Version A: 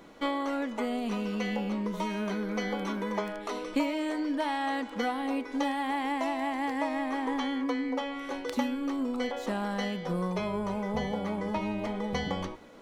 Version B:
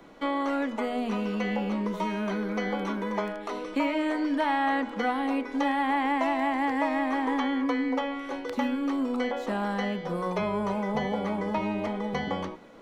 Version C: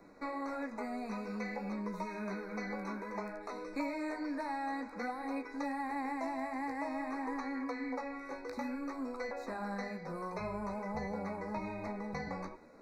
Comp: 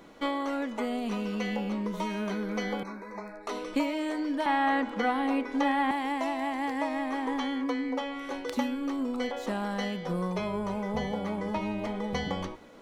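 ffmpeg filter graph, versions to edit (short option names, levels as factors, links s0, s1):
-filter_complex "[0:a]asplit=3[s0][s1][s2];[s0]atrim=end=2.832[s3];[2:a]atrim=start=2.828:end=3.472[s4];[s1]atrim=start=3.468:end=4.462[s5];[1:a]atrim=start=4.458:end=5.912[s6];[s2]atrim=start=5.908[s7];[s3][s4]acrossfade=d=0.004:c1=hsin:c2=hsin[s8];[s8][s5]acrossfade=d=0.004:c1=hsin:c2=hsin[s9];[s9][s6]acrossfade=d=0.004:c1=hsin:c2=hsin[s10];[s10][s7]acrossfade=d=0.004:c1=hsin:c2=hsin"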